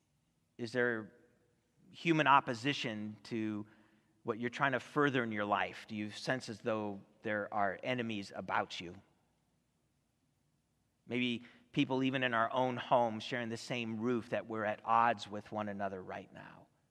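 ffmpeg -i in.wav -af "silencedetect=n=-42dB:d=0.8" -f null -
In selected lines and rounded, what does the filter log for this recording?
silence_start: 1.04
silence_end: 1.99 | silence_duration: 0.95
silence_start: 8.91
silence_end: 11.10 | silence_duration: 2.19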